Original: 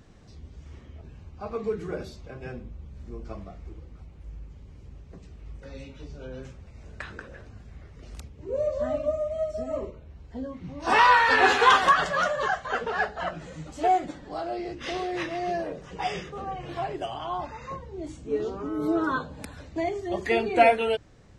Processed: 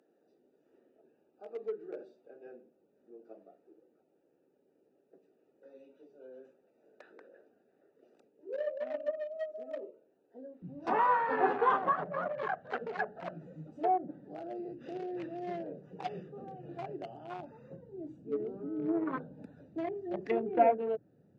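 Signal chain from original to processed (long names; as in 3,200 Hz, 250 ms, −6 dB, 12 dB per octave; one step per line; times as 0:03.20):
adaptive Wiener filter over 41 samples
high-pass filter 350 Hz 24 dB per octave, from 0:10.62 140 Hz
treble cut that deepens with the level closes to 950 Hz, closed at −22.5 dBFS
level −5 dB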